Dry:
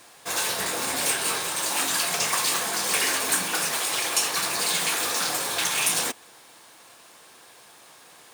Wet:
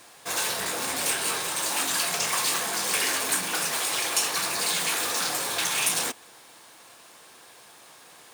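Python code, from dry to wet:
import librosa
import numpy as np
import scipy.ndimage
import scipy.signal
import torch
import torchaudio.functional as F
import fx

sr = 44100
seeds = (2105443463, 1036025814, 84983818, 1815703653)

y = fx.transformer_sat(x, sr, knee_hz=4000.0)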